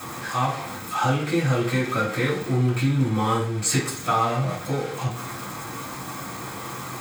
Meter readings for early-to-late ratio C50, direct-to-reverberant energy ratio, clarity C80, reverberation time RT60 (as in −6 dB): 6.5 dB, −10.5 dB, 11.0 dB, 0.45 s